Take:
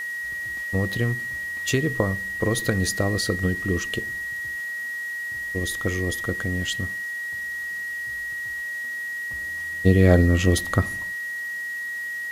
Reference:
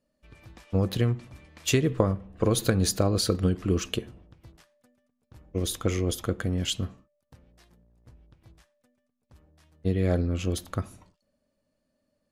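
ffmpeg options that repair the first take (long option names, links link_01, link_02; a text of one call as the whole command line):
ffmpeg -i in.wav -af "bandreject=frequency=1900:width=30,afwtdn=0.0045,asetnsamples=nb_out_samples=441:pad=0,asendcmd='8.64 volume volume -9dB',volume=0dB" out.wav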